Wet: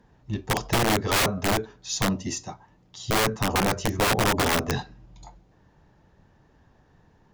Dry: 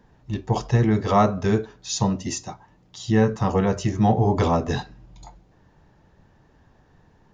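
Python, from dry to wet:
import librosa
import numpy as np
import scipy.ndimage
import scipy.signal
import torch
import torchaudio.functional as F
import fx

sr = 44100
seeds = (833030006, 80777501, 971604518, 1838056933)

y = fx.cheby_harmonics(x, sr, harmonics=(2, 3, 6, 7), levels_db=(-42, -32, -38, -44), full_scale_db=-6.0)
y = (np.mod(10.0 ** (15.0 / 20.0) * y + 1.0, 2.0) - 1.0) / 10.0 ** (15.0 / 20.0)
y = F.gain(torch.from_numpy(y), -1.0).numpy()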